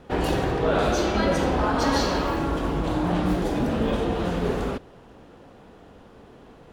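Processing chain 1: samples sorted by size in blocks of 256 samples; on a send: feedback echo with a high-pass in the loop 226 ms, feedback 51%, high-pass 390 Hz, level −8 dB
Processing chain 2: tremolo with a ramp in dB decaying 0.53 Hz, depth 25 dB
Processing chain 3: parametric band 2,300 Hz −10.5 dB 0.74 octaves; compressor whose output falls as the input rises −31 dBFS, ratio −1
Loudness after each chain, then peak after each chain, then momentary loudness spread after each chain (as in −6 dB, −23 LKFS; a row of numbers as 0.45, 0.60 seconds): −24.5, −31.0, −33.0 LKFS; −10.0, −10.5, −15.0 dBFS; 4, 16, 12 LU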